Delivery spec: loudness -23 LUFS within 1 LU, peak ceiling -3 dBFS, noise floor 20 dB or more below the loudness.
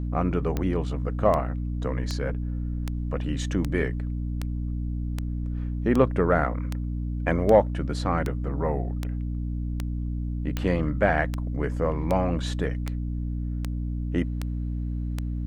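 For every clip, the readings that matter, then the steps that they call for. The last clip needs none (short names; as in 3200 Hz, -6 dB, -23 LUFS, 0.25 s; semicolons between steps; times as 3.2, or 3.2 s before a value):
clicks 20; hum 60 Hz; harmonics up to 300 Hz; hum level -26 dBFS; loudness -27.5 LUFS; peak -6.0 dBFS; loudness target -23.0 LUFS
-> de-click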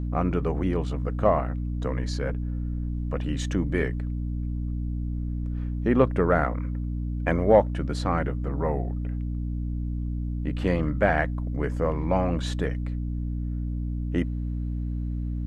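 clicks 0; hum 60 Hz; harmonics up to 300 Hz; hum level -26 dBFS
-> notches 60/120/180/240/300 Hz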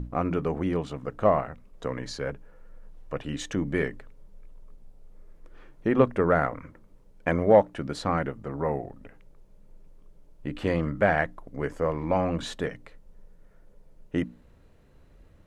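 hum none; loudness -27.5 LUFS; peak -6.0 dBFS; loudness target -23.0 LUFS
-> gain +4.5 dB; limiter -3 dBFS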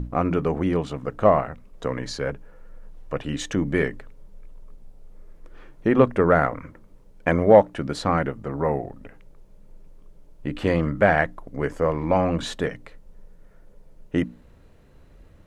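loudness -23.0 LUFS; peak -3.0 dBFS; noise floor -52 dBFS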